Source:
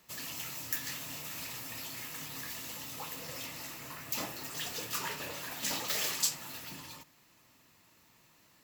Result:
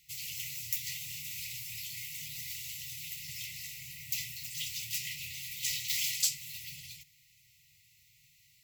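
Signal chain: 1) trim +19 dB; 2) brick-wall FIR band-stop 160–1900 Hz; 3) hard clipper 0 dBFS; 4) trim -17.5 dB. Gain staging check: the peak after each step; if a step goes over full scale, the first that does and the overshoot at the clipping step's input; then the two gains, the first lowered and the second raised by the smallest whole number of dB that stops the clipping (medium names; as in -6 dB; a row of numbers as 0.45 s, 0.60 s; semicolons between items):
+5.0 dBFS, +5.0 dBFS, 0.0 dBFS, -17.5 dBFS; step 1, 5.0 dB; step 1 +14 dB, step 4 -12.5 dB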